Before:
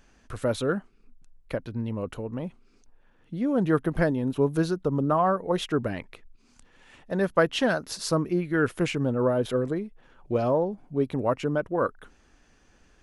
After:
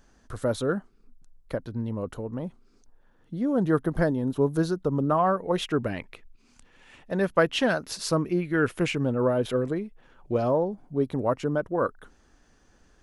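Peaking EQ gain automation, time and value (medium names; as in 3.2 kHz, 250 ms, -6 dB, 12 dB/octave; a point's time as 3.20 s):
peaking EQ 2.5 kHz 0.61 oct
4.57 s -9 dB
5.29 s +2.5 dB
9.78 s +2.5 dB
10.79 s -6.5 dB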